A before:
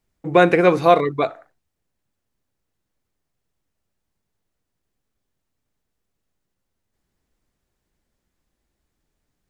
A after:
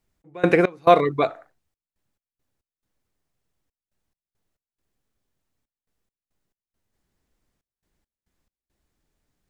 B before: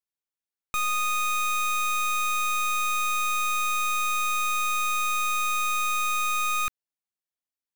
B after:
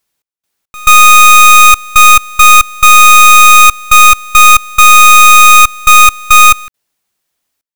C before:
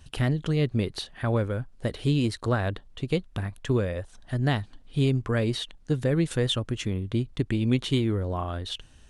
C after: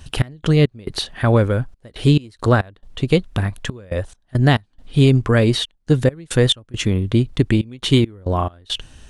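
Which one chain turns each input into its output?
step gate "x.x.xxxx." 69 bpm -24 dB; normalise peaks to -1.5 dBFS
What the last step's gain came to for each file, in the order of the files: -0.5, +24.0, +10.5 dB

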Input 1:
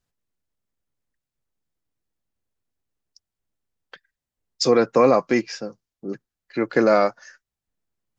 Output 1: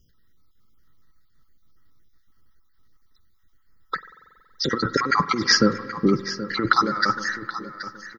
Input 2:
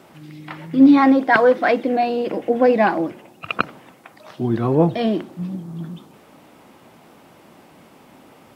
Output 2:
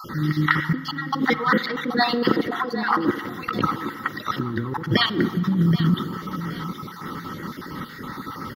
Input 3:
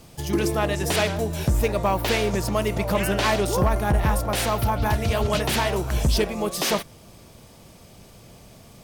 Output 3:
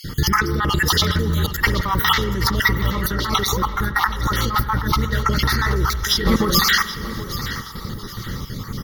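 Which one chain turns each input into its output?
random spectral dropouts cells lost 38%; low shelf 76 Hz +4 dB; fixed phaser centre 2500 Hz, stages 6; small resonant body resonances 1300/1900 Hz, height 13 dB, ringing for 45 ms; negative-ratio compressor -33 dBFS, ratio -1; feedback echo 0.776 s, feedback 34%, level -13.5 dB; spring tank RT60 2.1 s, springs 46 ms, chirp 55 ms, DRR 14.5 dB; normalise peaks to -2 dBFS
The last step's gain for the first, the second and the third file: +12.0, +9.5, +12.5 dB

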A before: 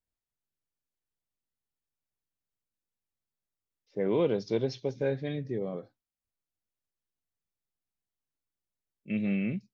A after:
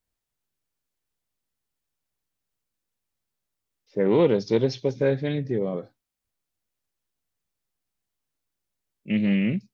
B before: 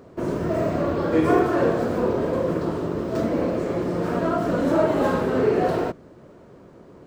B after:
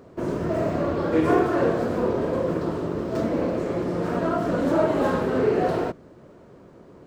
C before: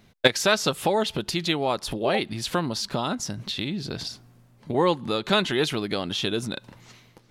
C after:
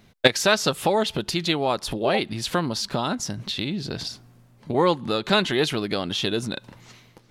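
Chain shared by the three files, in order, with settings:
Doppler distortion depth 0.12 ms; match loudness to -24 LUFS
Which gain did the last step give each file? +7.5, -1.0, +1.5 dB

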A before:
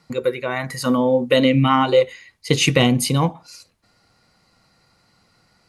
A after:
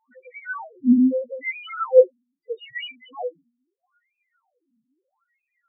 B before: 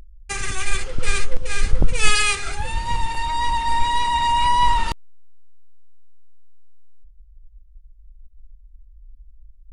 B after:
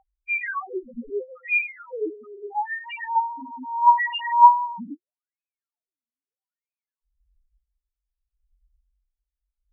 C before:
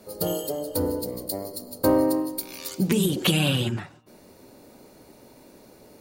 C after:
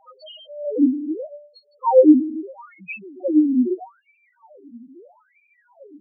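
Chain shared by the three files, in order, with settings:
wah 0.78 Hz 230–2500 Hz, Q 7.8; loudest bins only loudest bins 1; normalise peaks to -3 dBFS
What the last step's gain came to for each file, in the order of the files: +11.5, +20.0, +24.0 dB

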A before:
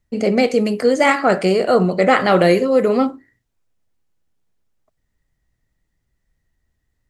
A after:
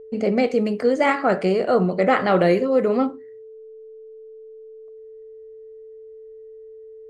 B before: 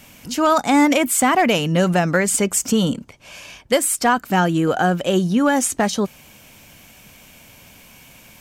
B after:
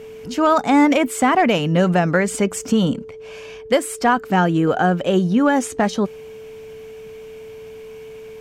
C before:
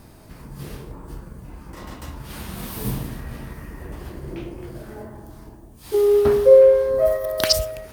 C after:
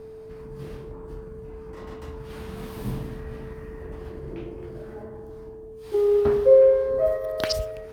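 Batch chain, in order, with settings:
whine 440 Hz -35 dBFS; LPF 2500 Hz 6 dB/oct; normalise peaks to -6 dBFS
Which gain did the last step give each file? -3.5, +1.0, -3.5 dB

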